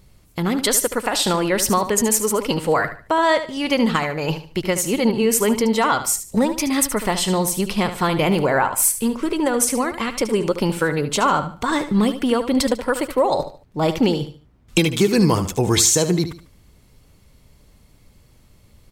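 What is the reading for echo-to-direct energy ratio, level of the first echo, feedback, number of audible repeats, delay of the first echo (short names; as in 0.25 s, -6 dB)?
-10.5 dB, -11.0 dB, 29%, 3, 74 ms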